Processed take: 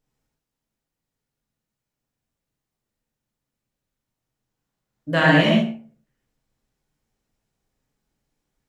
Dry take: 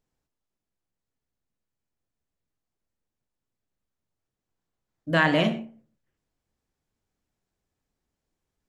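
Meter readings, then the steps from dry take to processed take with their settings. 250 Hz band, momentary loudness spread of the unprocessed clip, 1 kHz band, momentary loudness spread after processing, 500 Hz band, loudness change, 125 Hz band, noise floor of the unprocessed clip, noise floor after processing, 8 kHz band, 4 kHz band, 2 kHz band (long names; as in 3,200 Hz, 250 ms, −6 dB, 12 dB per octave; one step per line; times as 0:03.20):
+7.0 dB, 9 LU, +4.5 dB, 11 LU, +5.5 dB, +5.0 dB, +7.5 dB, below −85 dBFS, −85 dBFS, can't be measured, +6.5 dB, +5.5 dB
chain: reverb whose tail is shaped and stops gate 170 ms flat, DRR −3.5 dB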